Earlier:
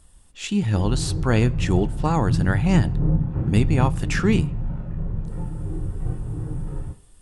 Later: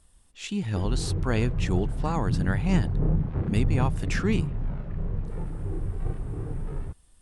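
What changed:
speech −6.5 dB
reverb: off

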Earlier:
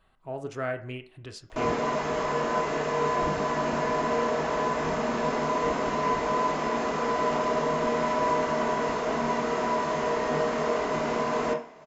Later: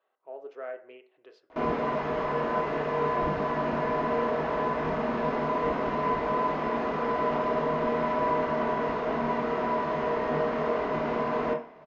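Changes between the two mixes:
speech: add four-pole ladder high-pass 400 Hz, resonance 50%
master: add high-frequency loss of the air 280 metres

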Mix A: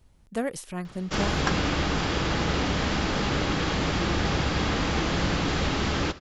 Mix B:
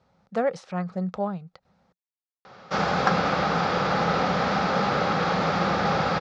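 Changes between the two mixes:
background: entry +1.60 s
master: add loudspeaker in its box 150–5,400 Hz, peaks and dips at 180 Hz +7 dB, 310 Hz −9 dB, 530 Hz +8 dB, 780 Hz +9 dB, 1,300 Hz +9 dB, 3,000 Hz −6 dB

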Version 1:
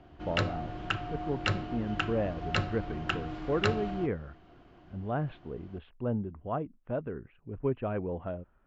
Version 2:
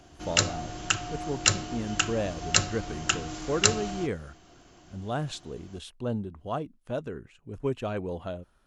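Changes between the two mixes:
speech: remove low-pass filter 2,700 Hz 24 dB per octave
master: remove high-frequency loss of the air 400 metres

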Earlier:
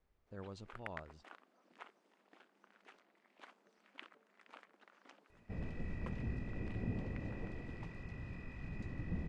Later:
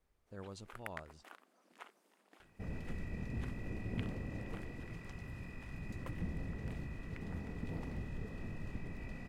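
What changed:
second sound: entry −2.90 s
master: remove high-frequency loss of the air 96 metres

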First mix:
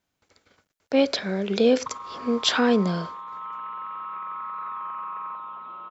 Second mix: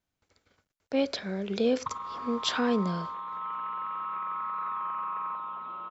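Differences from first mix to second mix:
speech −7.5 dB
master: add low-shelf EQ 97 Hz +9.5 dB

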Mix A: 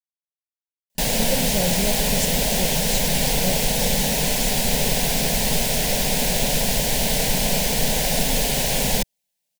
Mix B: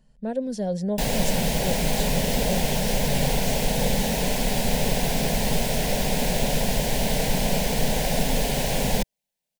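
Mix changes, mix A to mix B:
speech: entry −0.95 s
master: add high-shelf EQ 2,300 Hz −8 dB

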